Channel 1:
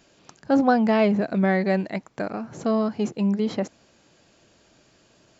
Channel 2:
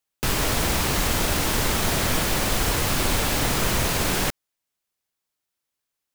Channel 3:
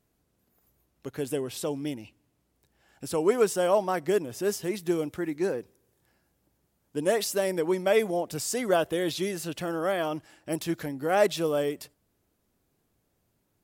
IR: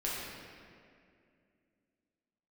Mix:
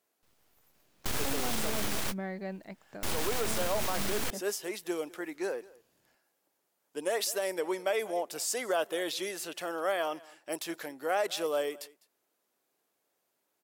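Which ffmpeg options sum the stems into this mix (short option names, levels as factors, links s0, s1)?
-filter_complex "[0:a]adelay=750,volume=0.15[s0];[1:a]aeval=exprs='abs(val(0))':c=same,volume=0.668[s1];[2:a]highpass=500,volume=0.891,asplit=3[s2][s3][s4];[s3]volume=0.075[s5];[s4]apad=whole_len=271044[s6];[s1][s6]sidechaingate=range=0.00708:threshold=0.002:ratio=16:detection=peak[s7];[s5]aecho=0:1:203:1[s8];[s0][s7][s2][s8]amix=inputs=4:normalize=0,alimiter=limit=0.1:level=0:latency=1:release=79"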